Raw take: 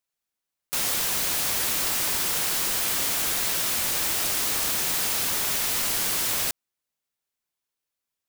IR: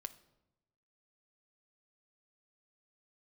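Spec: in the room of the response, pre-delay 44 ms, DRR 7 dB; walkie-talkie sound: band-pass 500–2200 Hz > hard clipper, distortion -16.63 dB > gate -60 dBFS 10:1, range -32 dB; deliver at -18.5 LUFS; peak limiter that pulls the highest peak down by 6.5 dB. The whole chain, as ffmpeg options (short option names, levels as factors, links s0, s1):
-filter_complex "[0:a]alimiter=limit=0.112:level=0:latency=1,asplit=2[s0][s1];[1:a]atrim=start_sample=2205,adelay=44[s2];[s1][s2]afir=irnorm=-1:irlink=0,volume=0.708[s3];[s0][s3]amix=inputs=2:normalize=0,highpass=500,lowpass=2200,asoftclip=type=hard:threshold=0.02,agate=range=0.0251:threshold=0.001:ratio=10,volume=9.44"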